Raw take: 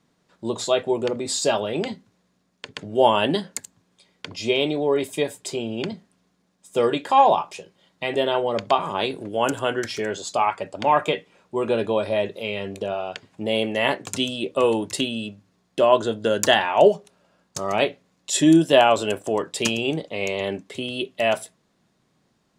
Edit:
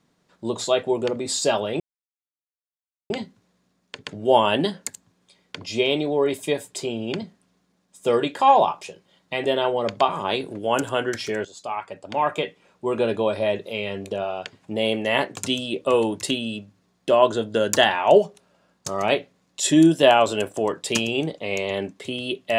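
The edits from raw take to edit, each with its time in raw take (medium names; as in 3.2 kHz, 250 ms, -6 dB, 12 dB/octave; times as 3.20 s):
1.80 s: insert silence 1.30 s
10.15–11.59 s: fade in, from -12.5 dB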